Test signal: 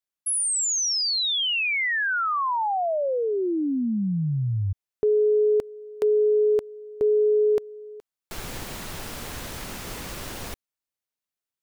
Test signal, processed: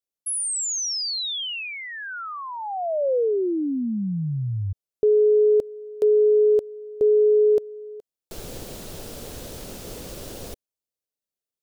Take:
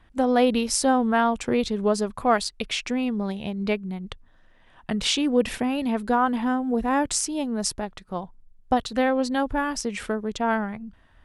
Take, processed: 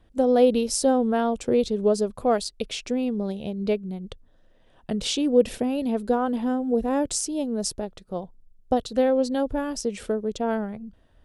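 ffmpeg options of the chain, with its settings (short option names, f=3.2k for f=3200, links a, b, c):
-af "equalizer=f=500:t=o:w=1:g=7,equalizer=f=1k:t=o:w=1:g=-7,equalizer=f=2k:t=o:w=1:g=-8,volume=-1.5dB"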